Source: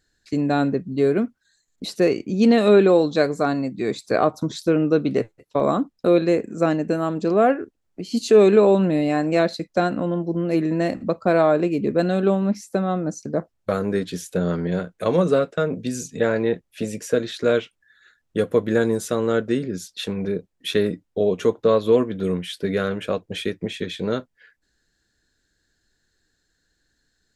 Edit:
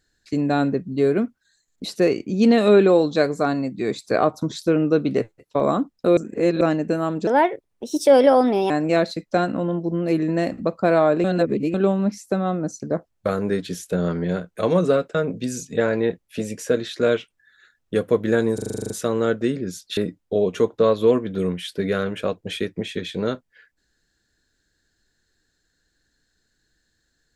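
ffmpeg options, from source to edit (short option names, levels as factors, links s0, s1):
-filter_complex "[0:a]asplit=17[s0][s1][s2][s3][s4][s5][s6][s7][s8][s9][s10][s11][s12][s13][s14][s15][s16];[s0]atrim=end=6.172[s17];[s1]atrim=start=6.168:end=6.612,asetpts=PTS-STARTPTS,areverse[s18];[s2]atrim=start=6.608:end=7.274[s19];[s3]atrim=start=7.27:end=9.13,asetpts=PTS-STARTPTS,asetrate=57330,aresample=44100[s20];[s4]atrim=start=9.126:end=11.672[s21];[s5]atrim=start=11.668:end=12.172,asetpts=PTS-STARTPTS,areverse[s22];[s6]atrim=start=12.168:end=19.012[s23];[s7]atrim=start=18.968:end=19.012[s24];[s8]atrim=start=18.968:end=19.012[s25];[s9]atrim=start=18.968:end=19.012[s26];[s10]atrim=start=18.968:end=19.012[s27];[s11]atrim=start=18.968:end=19.012[s28];[s12]atrim=start=18.968:end=19.012[s29];[s13]atrim=start=18.968:end=19.012[s30];[s14]atrim=start=18.968:end=19.012[s31];[s15]atrim=start=18.968:end=20.042[s32];[s16]atrim=start=20.818[s33];[s17][s18]acrossfade=d=0.004:c1=hsin:c2=hsin[s34];[s34][s19]acrossfade=d=0.004:c1=hsin:c2=hsin[s35];[s35][s20]acrossfade=d=0.004:c1=hsin:c2=hsin[s36];[s36][s21]acrossfade=d=0.004:c1=hsin:c2=hsin[s37];[s37][s22]acrossfade=d=0.004:c1=hsin:c2=hsin[s38];[s38][s23]acrossfade=d=0.004:c1=hsin:c2=hsin[s39];[s39][s24]acrossfade=d=0.004:c1=hsin:c2=hsin[s40];[s40][s25]acrossfade=d=0.004:c1=hsin:c2=hsin[s41];[s41][s26]acrossfade=d=0.004:c1=hsin:c2=hsin[s42];[s42][s27]acrossfade=d=0.004:c1=hsin:c2=hsin[s43];[s43][s28]acrossfade=d=0.004:c1=hsin:c2=hsin[s44];[s44][s29]acrossfade=d=0.004:c1=hsin:c2=hsin[s45];[s45][s30]acrossfade=d=0.004:c1=hsin:c2=hsin[s46];[s46][s31]acrossfade=d=0.004:c1=hsin:c2=hsin[s47];[s47][s32]acrossfade=d=0.004:c1=hsin:c2=hsin[s48];[s48][s33]acrossfade=d=0.004:c1=hsin:c2=hsin"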